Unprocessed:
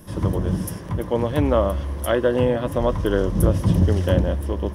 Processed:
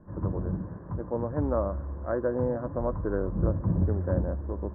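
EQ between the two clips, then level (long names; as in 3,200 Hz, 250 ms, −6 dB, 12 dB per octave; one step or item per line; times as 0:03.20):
Butterworth low-pass 1,600 Hz 48 dB per octave
high-frequency loss of the air 260 metres
−8.0 dB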